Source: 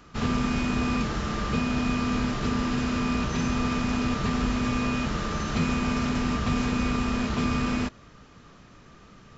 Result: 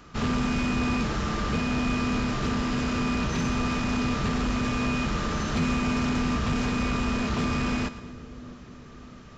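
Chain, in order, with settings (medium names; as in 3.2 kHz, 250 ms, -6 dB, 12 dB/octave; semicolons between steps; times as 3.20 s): saturation -21 dBFS, distortion -17 dB; on a send: two-band feedback delay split 560 Hz, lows 650 ms, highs 115 ms, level -15 dB; on the sum: trim +2 dB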